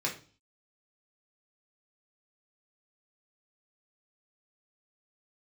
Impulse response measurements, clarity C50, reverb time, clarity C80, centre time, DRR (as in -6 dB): 10.0 dB, 0.40 s, 16.0 dB, 19 ms, -2.5 dB